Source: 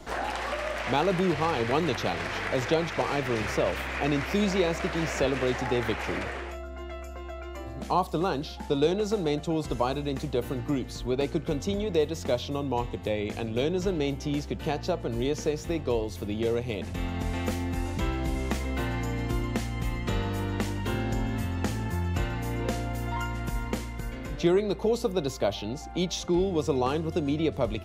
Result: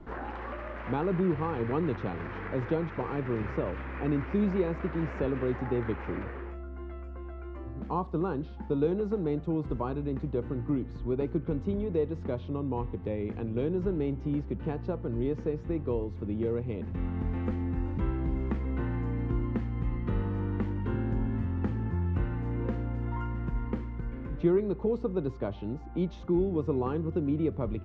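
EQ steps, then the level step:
low-pass filter 1,100 Hz 12 dB per octave
parametric band 670 Hz −11 dB 0.76 octaves
0.0 dB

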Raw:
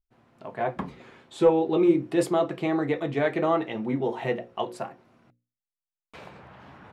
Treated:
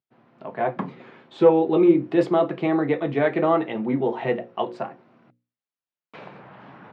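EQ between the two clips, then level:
high-pass filter 130 Hz 24 dB per octave
high-frequency loss of the air 210 metres
+4.5 dB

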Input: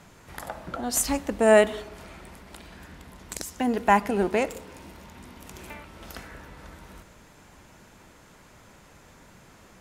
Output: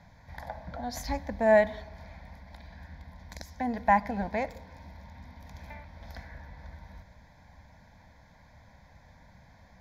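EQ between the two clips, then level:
low-pass filter 2,900 Hz 6 dB per octave
parametric band 72 Hz +6.5 dB 0.88 octaves
phaser with its sweep stopped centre 1,900 Hz, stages 8
−1.5 dB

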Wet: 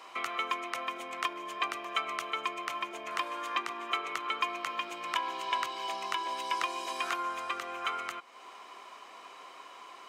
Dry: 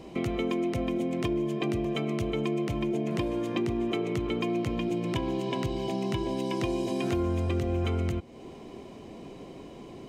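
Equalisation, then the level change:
high-pass with resonance 1,200 Hz, resonance Q 3.6
+2.0 dB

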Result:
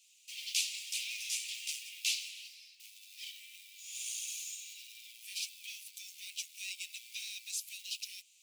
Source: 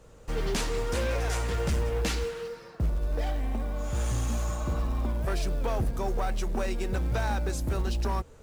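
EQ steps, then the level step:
Butterworth high-pass 2,400 Hz 72 dB per octave
+3.0 dB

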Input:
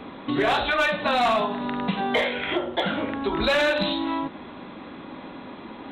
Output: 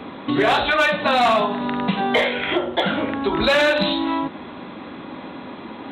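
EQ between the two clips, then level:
high-pass filter 57 Hz
+4.5 dB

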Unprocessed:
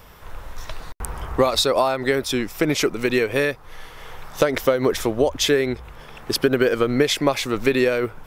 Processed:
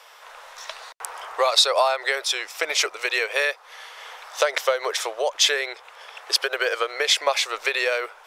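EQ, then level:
inverse Chebyshev high-pass filter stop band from 270 Hz, stop band 40 dB
high-frequency loss of the air 56 metres
high-shelf EQ 2,800 Hz +8.5 dB
0.0 dB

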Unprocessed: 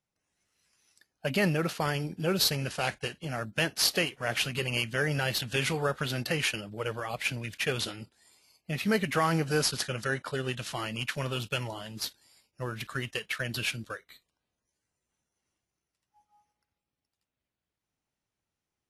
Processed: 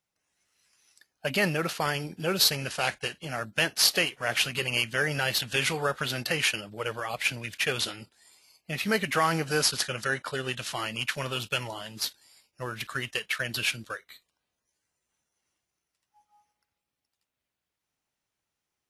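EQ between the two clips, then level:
low-shelf EQ 470 Hz −7.5 dB
+4.0 dB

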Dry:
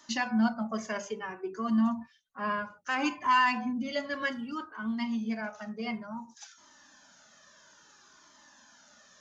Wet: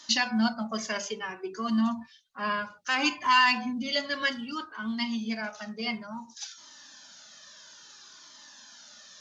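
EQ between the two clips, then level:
parametric band 4,200 Hz +13 dB 1.6 octaves
0.0 dB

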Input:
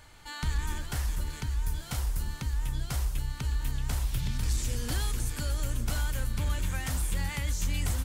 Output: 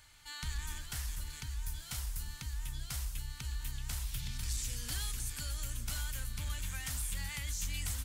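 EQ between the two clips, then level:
guitar amp tone stack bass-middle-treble 5-5-5
+4.5 dB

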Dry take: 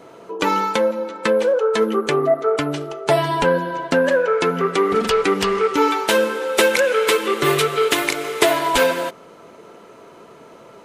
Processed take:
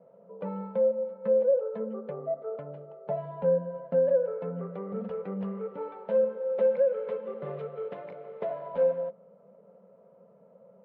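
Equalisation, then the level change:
pair of resonant band-passes 320 Hz, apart 1.5 octaves
high-frequency loss of the air 330 metres
−3.5 dB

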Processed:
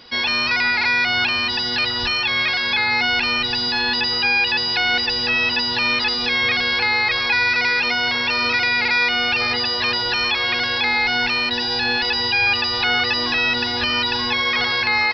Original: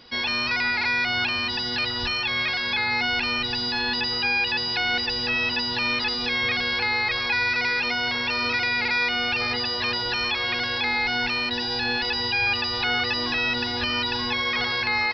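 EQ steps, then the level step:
low-shelf EQ 380 Hz −4 dB
+5.5 dB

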